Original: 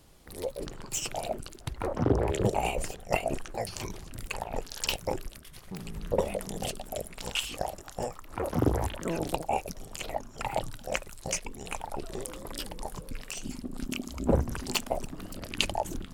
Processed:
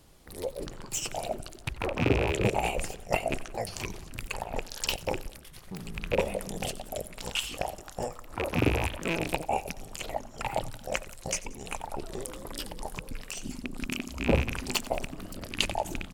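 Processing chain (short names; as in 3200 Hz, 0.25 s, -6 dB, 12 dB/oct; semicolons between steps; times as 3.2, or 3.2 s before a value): rattling part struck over -33 dBFS, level -19 dBFS; feedback echo 90 ms, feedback 55%, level -19.5 dB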